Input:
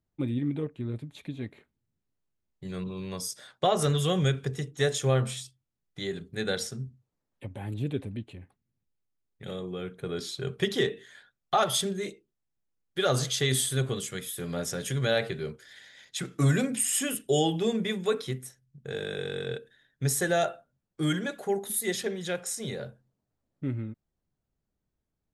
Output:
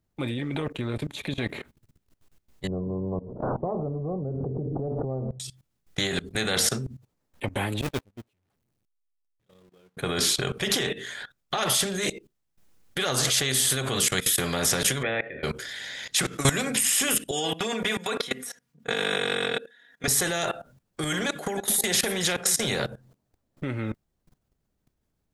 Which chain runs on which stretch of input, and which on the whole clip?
2.67–5.40 s: Gaussian low-pass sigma 15 samples + swell ahead of each attack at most 53 dB/s
7.81–9.97 s: jump at every zero crossing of -32 dBFS + gate -27 dBFS, range -50 dB
15.01–15.43 s: spectral peaks clipped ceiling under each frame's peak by 15 dB + cascade formant filter e
17.31–20.08 s: high-pass 790 Hz 6 dB/octave + treble shelf 2.7 kHz -8.5 dB + comb 4.2 ms, depth 93%
21.04–22.76 s: compression 3:1, threshold -34 dBFS + delay 312 ms -20 dB
whole clip: level held to a coarse grid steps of 20 dB; spectrum-flattening compressor 2:1; trim +7.5 dB

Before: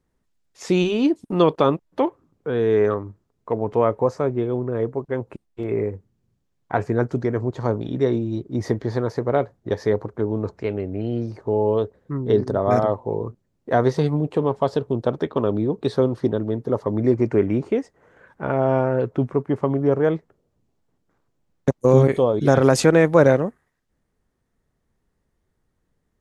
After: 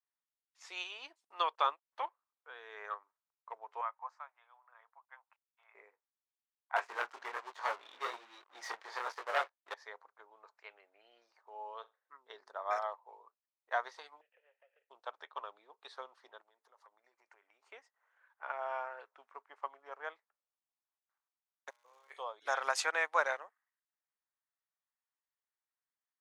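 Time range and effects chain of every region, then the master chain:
3.81–5.75 s: inverse Chebyshev high-pass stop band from 230 Hz, stop band 60 dB + treble shelf 2.7 kHz -12 dB
6.76–9.74 s: chorus 1.2 Hz, delay 20 ms, depth 7.1 ms + waveshaping leveller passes 3
11.74–12.16 s: dynamic bell 1.4 kHz, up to +5 dB, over -48 dBFS, Q 3.5 + flutter echo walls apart 7.6 m, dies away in 0.23 s
14.21–14.90 s: CVSD coder 16 kbps + vowel filter e + compression 3:1, threshold -35 dBFS
16.41–17.71 s: treble shelf 6.1 kHz +11 dB + compression, threshold -31 dBFS
21.69–22.10 s: feedback comb 120 Hz, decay 1.6 s, mix 90% + crackle 240 per s -39 dBFS
whole clip: high-pass 890 Hz 24 dB/octave; treble shelf 8.2 kHz -11 dB; upward expansion 1.5:1, over -45 dBFS; trim -4.5 dB

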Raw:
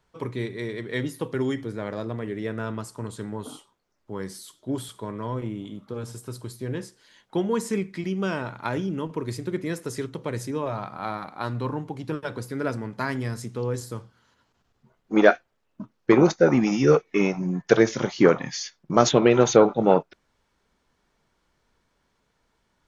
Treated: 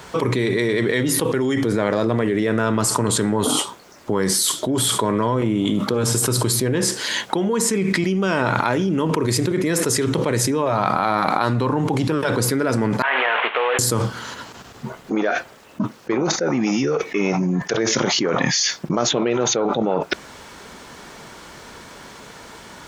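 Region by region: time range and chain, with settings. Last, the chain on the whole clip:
13.02–13.79 s: CVSD coder 16 kbps + high-pass 650 Hz 24 dB/octave + compression 3:1, threshold -43 dBFS
whole clip: high-pass 170 Hz 6 dB/octave; peaking EQ 7.7 kHz +2.5 dB 0.59 oct; level flattener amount 100%; trim -8 dB

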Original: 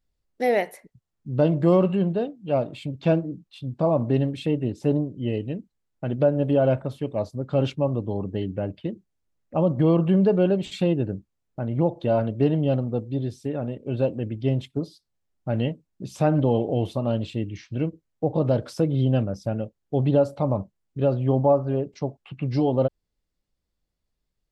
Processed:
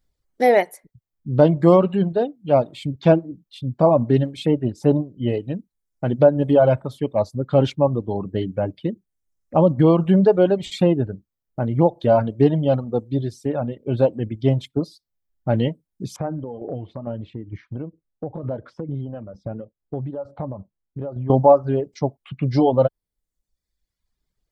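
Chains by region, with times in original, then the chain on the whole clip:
16.16–21.30 s: low-pass 1.6 kHz + compression 4:1, threshold -28 dBFS + tremolo saw down 2.2 Hz, depth 45%
whole clip: reverb removal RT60 1.1 s; band-stop 2.7 kHz, Q 10; dynamic bell 880 Hz, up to +4 dB, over -39 dBFS, Q 1.6; trim +5.5 dB

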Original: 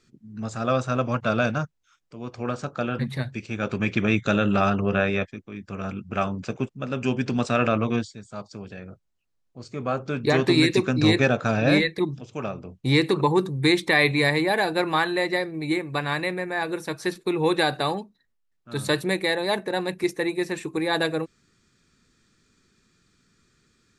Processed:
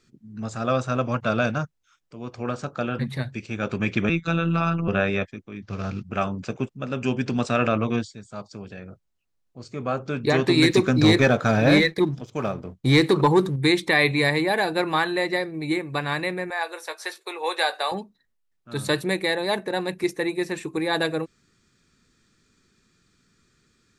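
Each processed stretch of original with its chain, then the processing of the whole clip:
4.09–4.88 s: comb 0.8 ms, depth 36% + robot voice 167 Hz + distance through air 69 m
5.62–6.03 s: CVSD coder 32 kbps + peaking EQ 110 Hz +8.5 dB 0.6 oct
10.62–13.56 s: band-stop 2.7 kHz, Q 8.7 + waveshaping leveller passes 1
16.50–17.92 s: high-pass 530 Hz 24 dB/octave + doubling 18 ms -10.5 dB
whole clip: none

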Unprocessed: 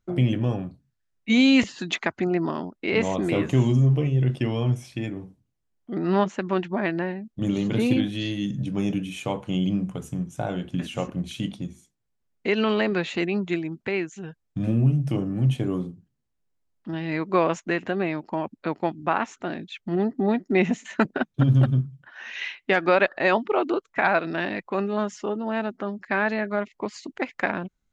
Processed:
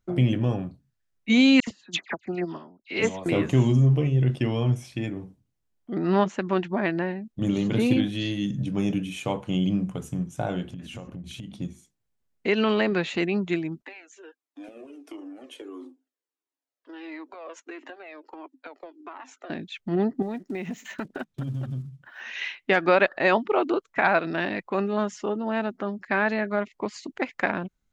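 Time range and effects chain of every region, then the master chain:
1.60–3.26 s: treble shelf 2.4 kHz +6.5 dB + phase dispersion lows, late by 74 ms, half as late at 2.1 kHz + upward expansion 2.5:1, over -32 dBFS
10.69–11.55 s: bass shelf 200 Hz +10 dB + compression 8:1, threshold -35 dBFS + tape noise reduction on one side only encoder only
13.82–19.50 s: Chebyshev high-pass 260 Hz, order 8 + compression 10:1, threshold -31 dBFS + Shepard-style flanger falling 1.5 Hz
20.22–22.21 s: block-companded coder 7-bit + compression 5:1, threshold -29 dBFS + decimation joined by straight lines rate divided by 2×
whole clip: none

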